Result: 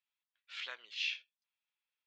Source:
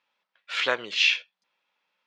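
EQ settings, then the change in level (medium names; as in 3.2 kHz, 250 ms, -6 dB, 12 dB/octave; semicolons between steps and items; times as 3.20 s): low-pass 4 kHz 12 dB/octave; differentiator; -6.5 dB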